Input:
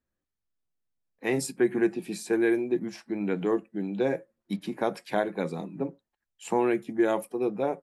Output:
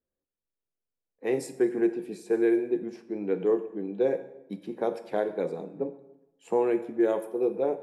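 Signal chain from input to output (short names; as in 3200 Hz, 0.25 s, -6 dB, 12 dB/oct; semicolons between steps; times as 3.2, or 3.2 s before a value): bell 460 Hz +11.5 dB 0.93 oct; plate-style reverb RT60 1 s, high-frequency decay 0.85×, DRR 10 dB; mismatched tape noise reduction decoder only; gain -7.5 dB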